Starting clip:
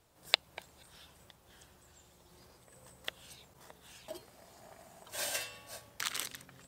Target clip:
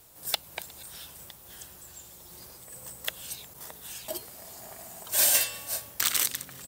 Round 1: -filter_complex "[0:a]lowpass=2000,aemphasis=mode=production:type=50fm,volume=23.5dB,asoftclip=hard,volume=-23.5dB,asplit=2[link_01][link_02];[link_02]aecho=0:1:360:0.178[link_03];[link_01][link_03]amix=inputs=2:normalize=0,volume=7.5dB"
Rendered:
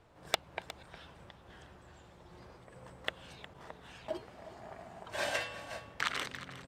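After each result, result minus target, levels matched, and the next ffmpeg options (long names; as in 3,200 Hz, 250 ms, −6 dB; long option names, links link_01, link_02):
2,000 Hz band +11.0 dB; echo-to-direct +10.5 dB
-filter_complex "[0:a]aemphasis=mode=production:type=50fm,volume=23.5dB,asoftclip=hard,volume=-23.5dB,asplit=2[link_01][link_02];[link_02]aecho=0:1:360:0.178[link_03];[link_01][link_03]amix=inputs=2:normalize=0,volume=7.5dB"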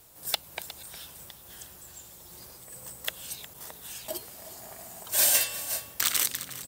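echo-to-direct +10.5 dB
-filter_complex "[0:a]aemphasis=mode=production:type=50fm,volume=23.5dB,asoftclip=hard,volume=-23.5dB,asplit=2[link_01][link_02];[link_02]aecho=0:1:360:0.0531[link_03];[link_01][link_03]amix=inputs=2:normalize=0,volume=7.5dB"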